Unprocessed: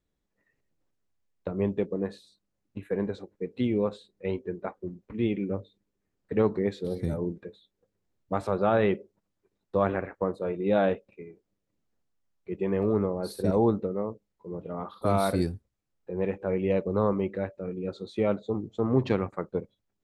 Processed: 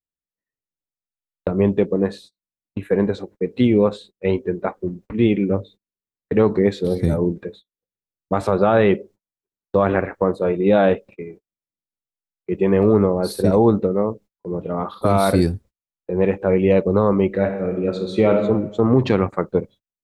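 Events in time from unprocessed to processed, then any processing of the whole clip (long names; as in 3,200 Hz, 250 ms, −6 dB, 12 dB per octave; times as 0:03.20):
0:17.27–0:18.42: thrown reverb, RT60 0.96 s, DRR 4.5 dB
whole clip: noise gate −51 dBFS, range −32 dB; boost into a limiter +15 dB; level −4 dB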